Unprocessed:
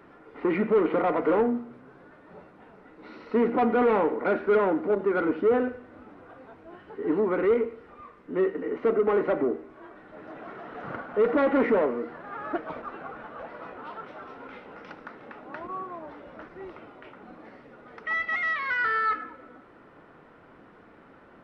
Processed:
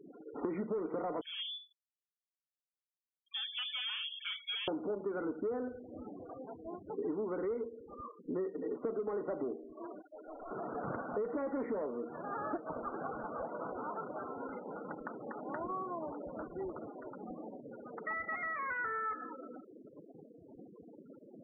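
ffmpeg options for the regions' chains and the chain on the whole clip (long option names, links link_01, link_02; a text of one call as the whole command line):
ffmpeg -i in.wav -filter_complex "[0:a]asettb=1/sr,asplit=3[link_01][link_02][link_03];[link_01]atrim=end=1.214[link_04];[link_02]atrim=start=1.21:end=4.68,asetpts=PTS-STARTPTS,afade=type=in:duration=0.004:curve=qsin,afade=type=out:start_time=3.466:duration=0.004:curve=qsin,equalizer=frequency=1800:width=1.1:gain=-3,lowpass=frequency=3100:width_type=q:width=0.5098,lowpass=frequency=3100:width_type=q:width=0.6013,lowpass=frequency=3100:width_type=q:width=0.9,lowpass=frequency=3100:width_type=q:width=2.563,afreqshift=-3700[link_05];[link_03]atrim=start=4.676[link_06];[link_04][link_05]acrossfade=duration=0.004:curve1=hsin:curve2=qsin[link_07];[link_07][link_06]acrossfade=duration=0.004:curve1=qsin:curve2=hsin,asettb=1/sr,asplit=3[link_08][link_09][link_10];[link_08]atrim=end=10.024[link_11];[link_09]atrim=start=10.02:end=10.51,asetpts=PTS-STARTPTS,afade=type=in:duration=0.004:curve=qsin,afade=type=out:start_time=0.486:duration=0.004:curve=qsin,highpass=frequency=760:poles=1,aeval=exprs='clip(val(0),-1,0.00398)':channel_layout=same[link_12];[link_10]atrim=start=10.506[link_13];[link_11][link_12]acrossfade=duration=0.004:curve1=hsin:curve2=qsin[link_14];[link_14][link_13]acrossfade=duration=0.004:curve1=qsin:curve2=hsin,lowpass=1200,afftfilt=real='re*gte(hypot(re,im),0.00794)':imag='im*gte(hypot(re,im),0.00794)':win_size=1024:overlap=0.75,acompressor=threshold=-38dB:ratio=6,volume=2.5dB" out.wav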